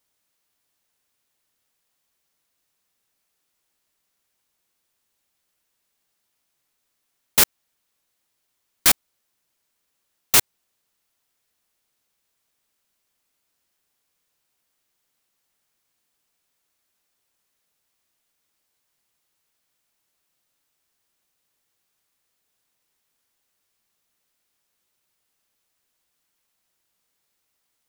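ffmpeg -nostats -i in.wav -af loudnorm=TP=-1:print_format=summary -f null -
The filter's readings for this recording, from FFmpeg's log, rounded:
Input Integrated:    -18.6 LUFS
Input True Peak:      -1.1 dBTP
Input LRA:             2.9 LU
Input Threshold:     -28.9 LUFS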